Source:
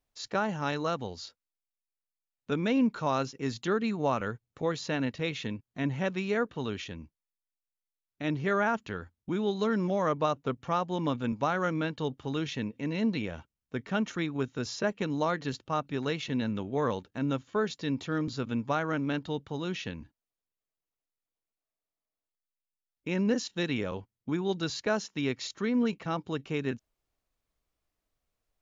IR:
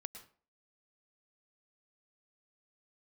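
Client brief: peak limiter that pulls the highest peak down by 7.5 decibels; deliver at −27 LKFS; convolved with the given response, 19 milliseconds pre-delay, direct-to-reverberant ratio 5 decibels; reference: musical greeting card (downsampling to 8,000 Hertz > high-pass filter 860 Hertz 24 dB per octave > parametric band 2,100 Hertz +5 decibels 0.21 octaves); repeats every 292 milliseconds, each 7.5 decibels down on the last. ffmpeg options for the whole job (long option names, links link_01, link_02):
-filter_complex "[0:a]alimiter=limit=-21dB:level=0:latency=1,aecho=1:1:292|584|876|1168|1460:0.422|0.177|0.0744|0.0312|0.0131,asplit=2[link_01][link_02];[1:a]atrim=start_sample=2205,adelay=19[link_03];[link_02][link_03]afir=irnorm=-1:irlink=0,volume=-1.5dB[link_04];[link_01][link_04]amix=inputs=2:normalize=0,aresample=8000,aresample=44100,highpass=frequency=860:width=0.5412,highpass=frequency=860:width=1.3066,equalizer=frequency=2100:width_type=o:width=0.21:gain=5,volume=11dB"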